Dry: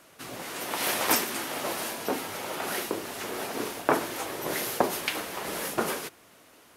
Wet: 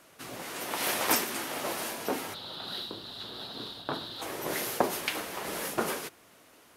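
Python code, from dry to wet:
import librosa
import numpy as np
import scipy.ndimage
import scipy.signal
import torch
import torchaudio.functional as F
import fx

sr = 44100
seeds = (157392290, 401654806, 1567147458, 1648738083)

y = fx.curve_eq(x, sr, hz=(130.0, 410.0, 1500.0, 2300.0, 3900.0, 6000.0), db=(0, -11, -8, -17, 12, -17), at=(2.33, 4.21), fade=0.02)
y = y * librosa.db_to_amplitude(-2.0)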